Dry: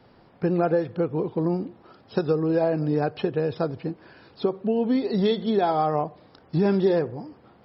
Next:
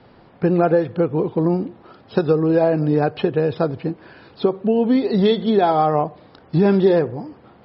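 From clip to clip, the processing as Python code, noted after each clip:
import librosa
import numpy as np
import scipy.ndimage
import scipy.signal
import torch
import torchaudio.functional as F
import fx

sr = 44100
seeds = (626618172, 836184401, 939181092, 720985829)

y = scipy.signal.sosfilt(scipy.signal.butter(4, 4600.0, 'lowpass', fs=sr, output='sos'), x)
y = y * 10.0 ** (6.0 / 20.0)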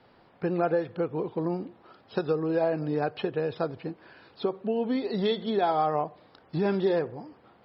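y = fx.low_shelf(x, sr, hz=390.0, db=-7.5)
y = y * 10.0 ** (-6.5 / 20.0)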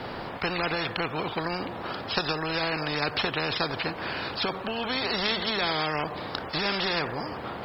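y = fx.spectral_comp(x, sr, ratio=4.0)
y = y * 10.0 ** (5.5 / 20.0)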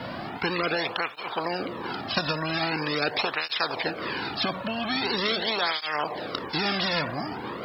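y = fx.flanger_cancel(x, sr, hz=0.43, depth_ms=2.6)
y = y * 10.0 ** (4.0 / 20.0)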